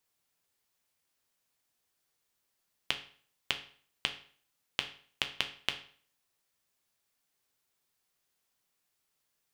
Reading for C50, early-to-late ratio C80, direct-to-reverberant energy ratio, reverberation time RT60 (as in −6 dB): 12.0 dB, 16.0 dB, 5.0 dB, 0.50 s